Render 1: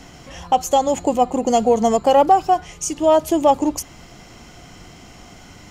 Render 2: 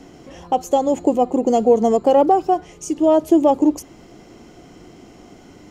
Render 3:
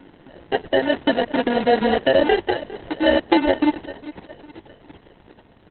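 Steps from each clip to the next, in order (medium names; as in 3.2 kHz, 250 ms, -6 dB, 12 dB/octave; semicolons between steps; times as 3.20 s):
peaking EQ 350 Hz +14 dB 1.7 oct; trim -8 dB
sample-and-hold 37×; feedback delay 406 ms, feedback 53%, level -17 dB; trim -2.5 dB; Opus 6 kbps 48 kHz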